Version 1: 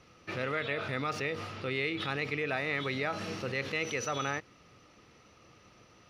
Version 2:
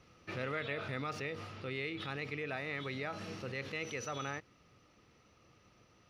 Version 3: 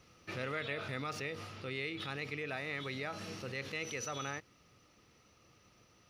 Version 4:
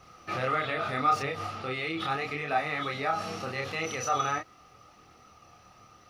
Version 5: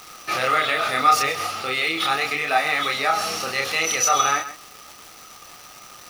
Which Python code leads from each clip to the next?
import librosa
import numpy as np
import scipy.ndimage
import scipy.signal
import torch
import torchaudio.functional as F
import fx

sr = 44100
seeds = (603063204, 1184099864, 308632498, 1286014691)

y1 = fx.low_shelf(x, sr, hz=190.0, db=4.0)
y1 = fx.rider(y1, sr, range_db=4, speed_s=2.0)
y1 = y1 * 10.0 ** (-7.0 / 20.0)
y2 = fx.high_shelf(y1, sr, hz=5100.0, db=9.5)
y2 = y2 * 10.0 ** (-1.0 / 20.0)
y3 = fx.chorus_voices(y2, sr, voices=2, hz=0.39, base_ms=28, depth_ms=3.4, mix_pct=45)
y3 = fx.small_body(y3, sr, hz=(770.0, 1200.0), ring_ms=20, db=13)
y3 = y3 * 10.0 ** (8.5 / 20.0)
y4 = fx.riaa(y3, sr, side='recording')
y4 = y4 + 10.0 ** (-13.5 / 20.0) * np.pad(y4, (int(131 * sr / 1000.0), 0))[:len(y4)]
y4 = fx.dmg_crackle(y4, sr, seeds[0], per_s=590.0, level_db=-40.0)
y4 = y4 * 10.0 ** (8.0 / 20.0)